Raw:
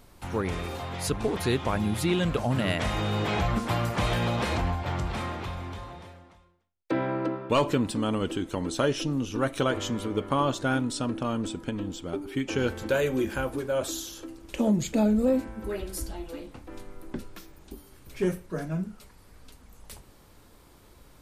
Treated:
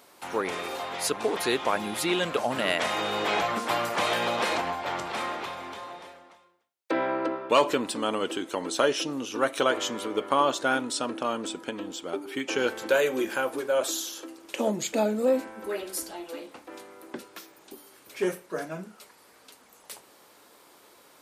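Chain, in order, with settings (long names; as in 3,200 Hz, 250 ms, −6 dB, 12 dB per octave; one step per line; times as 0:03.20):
high-pass filter 410 Hz 12 dB per octave
level +4 dB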